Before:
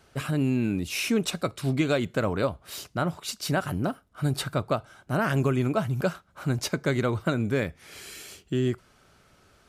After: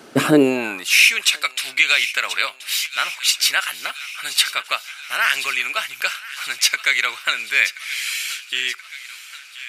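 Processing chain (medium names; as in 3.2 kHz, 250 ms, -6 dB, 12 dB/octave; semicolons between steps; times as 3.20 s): high-pass sweep 260 Hz -> 2.3 kHz, 0.21–1.06 s; feedback echo behind a high-pass 1028 ms, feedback 62%, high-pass 1.6 kHz, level -14.5 dB; loudness maximiser +15.5 dB; trim -1 dB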